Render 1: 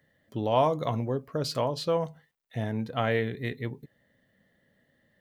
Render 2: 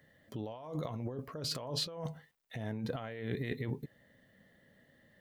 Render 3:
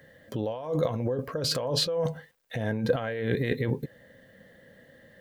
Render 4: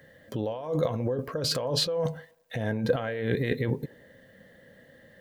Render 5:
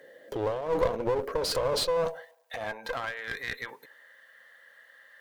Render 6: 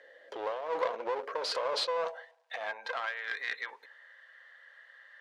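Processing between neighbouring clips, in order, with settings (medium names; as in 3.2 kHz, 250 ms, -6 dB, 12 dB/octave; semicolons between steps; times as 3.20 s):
compressor with a negative ratio -36 dBFS, ratio -1; trim -3.5 dB
small resonant body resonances 510/1600 Hz, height 10 dB, ringing for 45 ms; trim +8.5 dB
feedback echo behind a band-pass 89 ms, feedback 49%, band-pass 570 Hz, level -20.5 dB
high-pass sweep 410 Hz -> 1.2 kHz, 1.46–3.30 s; one-sided clip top -33.5 dBFS
band-pass 680–4600 Hz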